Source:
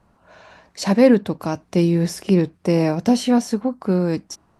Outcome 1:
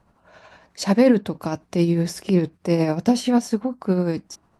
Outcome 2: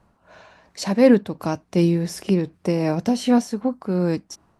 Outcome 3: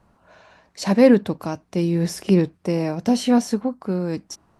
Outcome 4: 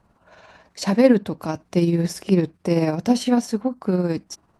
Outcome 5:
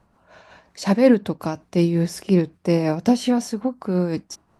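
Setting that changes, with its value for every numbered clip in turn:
amplitude tremolo, speed: 11, 2.7, 0.88, 18, 5.5 Hertz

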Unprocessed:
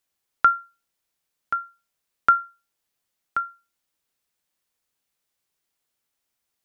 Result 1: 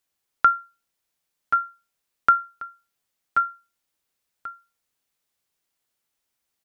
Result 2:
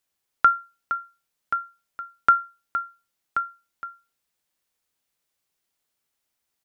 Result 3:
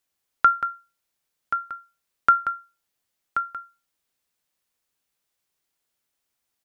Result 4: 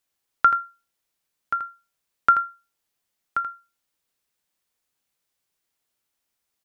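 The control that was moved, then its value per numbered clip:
single-tap delay, delay time: 1,088, 465, 182, 82 milliseconds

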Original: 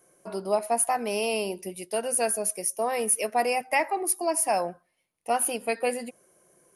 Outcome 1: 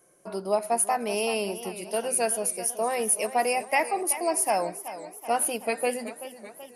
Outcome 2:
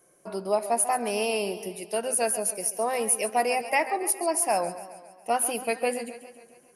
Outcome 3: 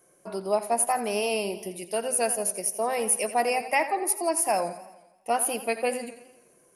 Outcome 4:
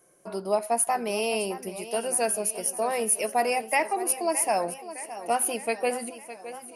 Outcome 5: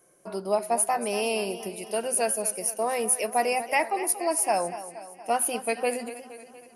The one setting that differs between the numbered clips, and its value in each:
feedback echo with a swinging delay time, delay time: 380, 138, 85, 613, 235 milliseconds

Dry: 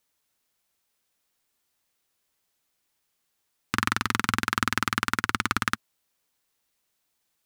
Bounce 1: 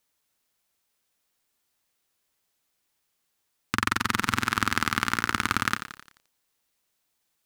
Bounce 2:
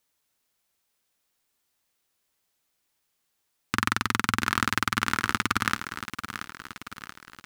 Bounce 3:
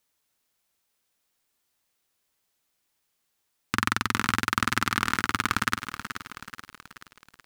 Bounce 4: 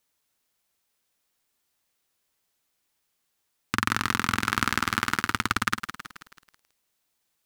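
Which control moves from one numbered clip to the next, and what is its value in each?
feedback echo at a low word length, delay time: 87, 680, 430, 162 milliseconds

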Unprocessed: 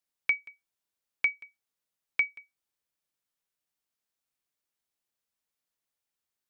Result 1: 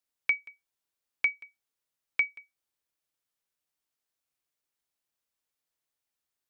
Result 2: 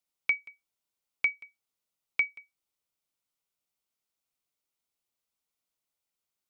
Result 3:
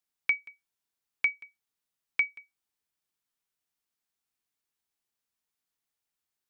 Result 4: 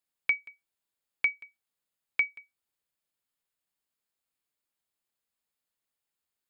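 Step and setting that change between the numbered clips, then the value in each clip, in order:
notch filter, centre frequency: 200, 1,700, 560, 5,800 Hertz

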